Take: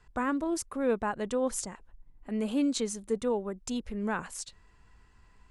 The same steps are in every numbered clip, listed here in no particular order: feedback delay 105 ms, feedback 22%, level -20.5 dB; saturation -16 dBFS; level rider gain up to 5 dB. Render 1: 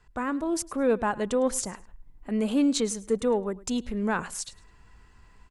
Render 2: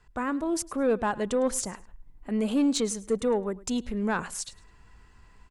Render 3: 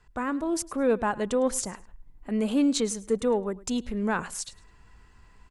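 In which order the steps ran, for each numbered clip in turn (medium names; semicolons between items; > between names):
saturation > level rider > feedback delay; level rider > saturation > feedback delay; saturation > feedback delay > level rider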